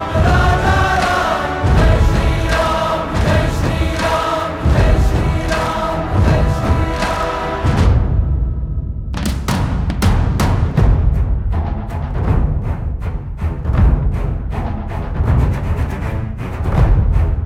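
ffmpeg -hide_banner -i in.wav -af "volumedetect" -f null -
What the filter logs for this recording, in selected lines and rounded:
mean_volume: -14.7 dB
max_volume: -2.8 dB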